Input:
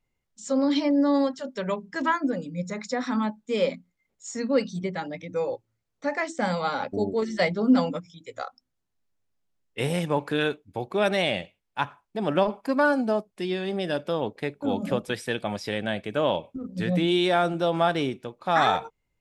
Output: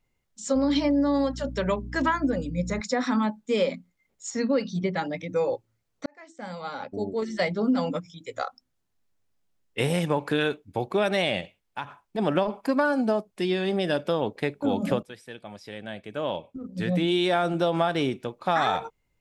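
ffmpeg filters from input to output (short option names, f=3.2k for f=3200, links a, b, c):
-filter_complex "[0:a]asettb=1/sr,asplit=3[a][b][c];[a]atrim=end=0.554[d];[b]atrim=start=0.55:end=2.81,asetpts=PTS-STARTPTS,afade=t=in:d=0.004:c=qsin,afade=t=out:st=2.256:d=0.004:c=qsin,aeval=exprs='val(0)+0.0112*(sin(2*PI*60*n/s)+sin(2*PI*2*60*n/s)/2+sin(2*PI*3*60*n/s)/3+sin(2*PI*4*60*n/s)/4+sin(2*PI*5*60*n/s)/5)':c=same[e];[c]atrim=start=2.806[f];[d][e]acrossfade=d=0.004:c1=hsin:c2=qsin[g];[g][f]acrossfade=d=0.004:c1=qsin:c2=hsin,asettb=1/sr,asplit=3[h][i][j];[h]atrim=end=4.304[k];[i]atrim=start=4.3:end=4.97,asetpts=PTS-STARTPTS,afade=t=in:d=0.004:c=qsin,afade=t=out:st=0.666:d=0.004:c=qsin,lowpass=f=5.9k:w=0.5412,lowpass=f=5.9k:w=1.3066[l];[j]atrim=start=4.966[m];[k][l]acrossfade=d=0.004:c1=hsin:c2=qsin[n];[n][m]acrossfade=d=0.004:c1=qsin:c2=hsin,asplit=3[o][p][q];[o]afade=t=out:st=11.4:d=0.02[r];[p]acompressor=threshold=-31dB:ratio=10:attack=3.2:release=140:knee=1:detection=peak,afade=t=in:st=11.4:d=0.02,afade=t=out:st=12.17:d=0.02[s];[q]afade=t=in:st=12.17:d=0.02[t];[r][s][t]amix=inputs=3:normalize=0,asplit=3[u][v][w];[u]atrim=end=6.06,asetpts=PTS-STARTPTS,afade=t=out:st=6.056:d=0.004:c=hsin[x];[v]atrim=start=6.06:end=15.03,asetpts=PTS-STARTPTS,afade=t=in:d=2.25,afade=t=out:st=8.966:d=0.004:c=hsin:silence=0.141254[y];[w]atrim=start=15.03,asetpts=PTS-STARTPTS,afade=t=in:d=2.42:c=qua:silence=0.141254[z];[x][y][z]concat=n=3:v=0:a=1,acompressor=threshold=-23dB:ratio=6,volume=3.5dB"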